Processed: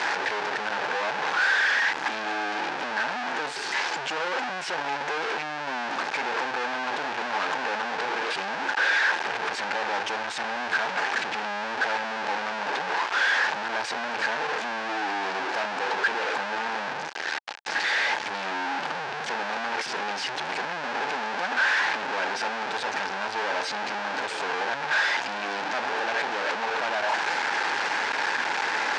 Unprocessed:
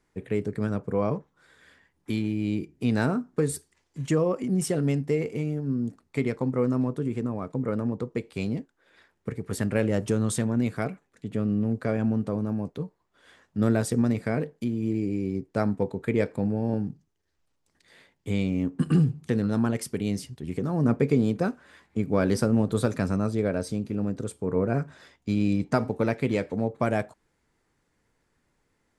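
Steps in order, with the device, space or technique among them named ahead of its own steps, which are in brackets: home computer beeper (one-bit comparator; cabinet simulation 550–5400 Hz, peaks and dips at 850 Hz +10 dB, 1.6 kHz +10 dB, 2.5 kHz +4 dB)

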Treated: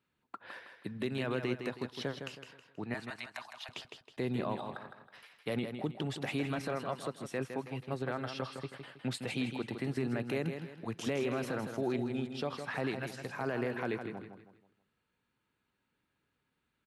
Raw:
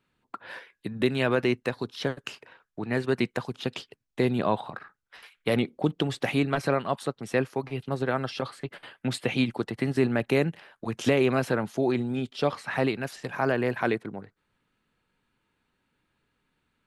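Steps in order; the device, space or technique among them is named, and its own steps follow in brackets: clipper into limiter (hard clipper -12 dBFS, distortion -39 dB; peak limiter -17.5 dBFS, peak gain reduction 5.5 dB); high-pass 48 Hz; 2.94–3.69 s: steep high-pass 600 Hz 96 dB/octave; feedback delay 160 ms, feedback 36%, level -7.5 dB; trim -7 dB

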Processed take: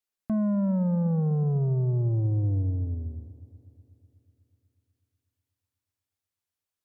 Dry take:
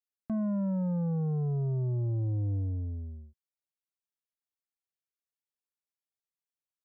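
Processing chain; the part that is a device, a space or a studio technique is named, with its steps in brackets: multi-head tape echo (multi-head delay 123 ms, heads second and third, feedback 52%, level -19.5 dB; wow and flutter 17 cents); trim +5 dB

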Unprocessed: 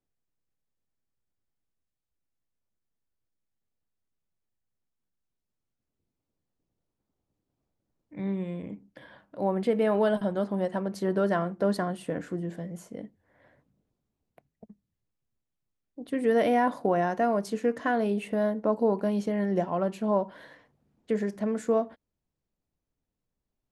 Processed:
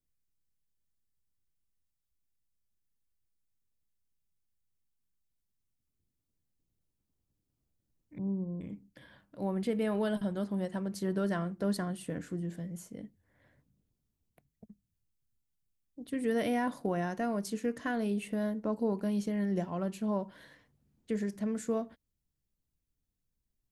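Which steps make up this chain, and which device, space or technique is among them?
smiley-face EQ (bass shelf 150 Hz +8.5 dB; peaking EQ 700 Hz -6 dB 1.8 oct; treble shelf 5.1 kHz +9 dB); 8.18–8.61 s: steep low-pass 1.1 kHz 96 dB/octave; trim -5 dB

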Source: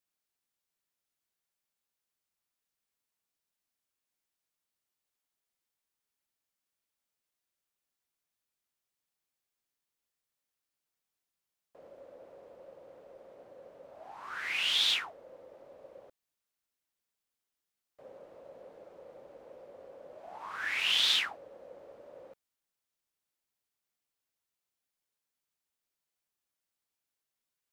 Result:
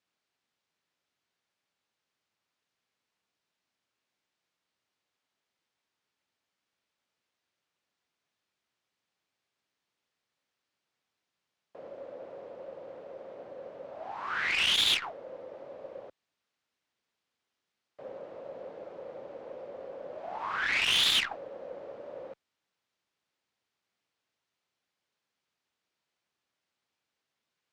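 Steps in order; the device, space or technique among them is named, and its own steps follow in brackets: valve radio (band-pass 91–4500 Hz; valve stage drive 28 dB, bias 0.25; transformer saturation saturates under 1.1 kHz); trim +9 dB

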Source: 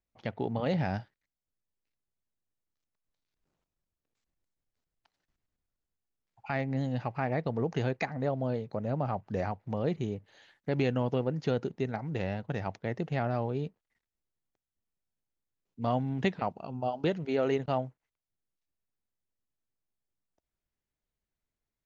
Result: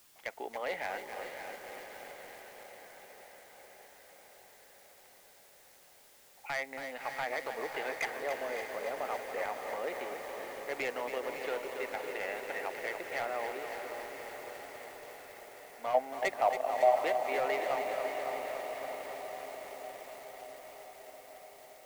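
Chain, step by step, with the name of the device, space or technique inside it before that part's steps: high-pass 340 Hz 12 dB/octave; drive-through speaker (band-pass 500–3100 Hz; peaking EQ 2.1 kHz +10.5 dB 0.45 oct; hard clipper -27 dBFS, distortion -13 dB; white noise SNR 20 dB); 15.94–16.99 s: peaking EQ 640 Hz +13.5 dB 0.85 oct; echo that smears into a reverb 585 ms, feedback 73%, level -8 dB; bit-crushed delay 278 ms, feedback 80%, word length 8-bit, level -7.5 dB; trim -1.5 dB

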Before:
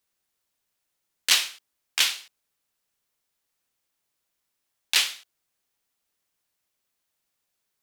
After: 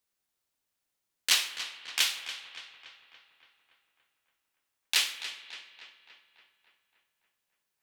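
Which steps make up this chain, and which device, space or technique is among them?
dub delay into a spring reverb (filtered feedback delay 285 ms, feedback 61%, low-pass 4.1 kHz, level -10.5 dB; spring tank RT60 2.4 s, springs 59 ms, chirp 30 ms, DRR 12 dB); trim -4.5 dB

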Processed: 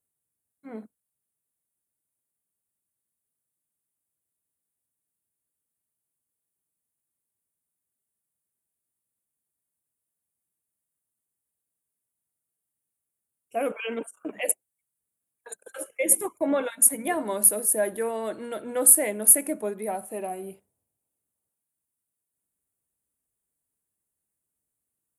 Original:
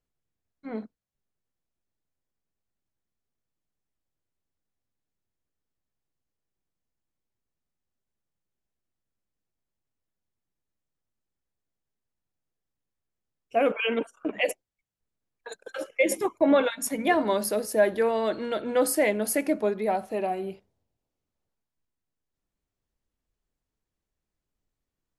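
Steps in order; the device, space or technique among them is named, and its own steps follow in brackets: budget condenser microphone (high-pass 84 Hz; resonant high shelf 6.9 kHz +13.5 dB, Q 3); trim -4.5 dB

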